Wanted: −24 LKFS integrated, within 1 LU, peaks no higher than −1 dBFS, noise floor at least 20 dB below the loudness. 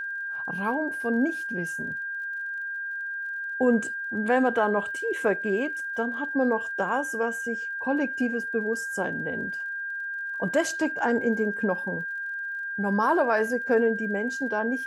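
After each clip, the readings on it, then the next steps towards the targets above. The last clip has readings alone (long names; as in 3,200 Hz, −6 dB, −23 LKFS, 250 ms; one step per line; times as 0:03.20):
crackle rate 39 per second; interfering tone 1,600 Hz; level of the tone −30 dBFS; integrated loudness −27.0 LKFS; sample peak −10.0 dBFS; target loudness −24.0 LKFS
→ click removal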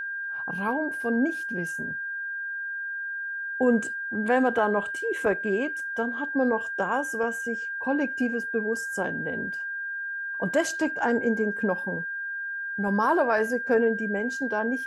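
crackle rate 0.13 per second; interfering tone 1,600 Hz; level of the tone −30 dBFS
→ notch filter 1,600 Hz, Q 30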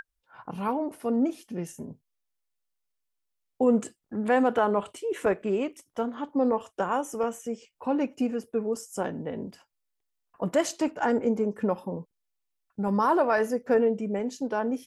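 interfering tone none found; integrated loudness −28.0 LKFS; sample peak −11.0 dBFS; target loudness −24.0 LKFS
→ level +4 dB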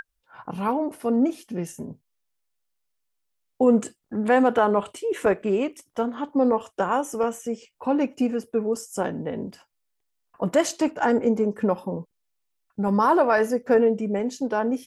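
integrated loudness −24.0 LKFS; sample peak −7.0 dBFS; background noise floor −76 dBFS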